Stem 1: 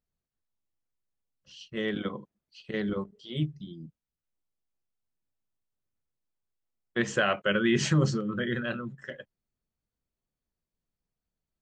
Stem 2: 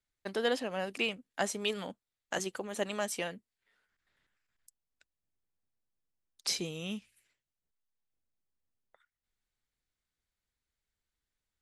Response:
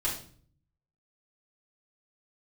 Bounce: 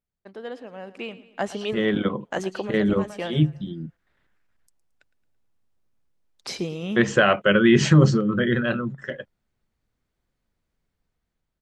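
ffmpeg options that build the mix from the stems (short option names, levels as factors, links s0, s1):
-filter_complex "[0:a]highshelf=f=3400:g=10,volume=0.841,asplit=2[s0][s1];[1:a]dynaudnorm=f=680:g=3:m=1.58,volume=0.562,asplit=2[s2][s3];[s3]volume=0.133[s4];[s1]apad=whole_len=512416[s5];[s2][s5]sidechaincompress=threshold=0.00891:ratio=10:attack=22:release=337[s6];[s4]aecho=0:1:111|222|333|444|555|666:1|0.46|0.212|0.0973|0.0448|0.0206[s7];[s0][s6][s7]amix=inputs=3:normalize=0,lowpass=f=1300:p=1,dynaudnorm=f=390:g=7:m=3.76"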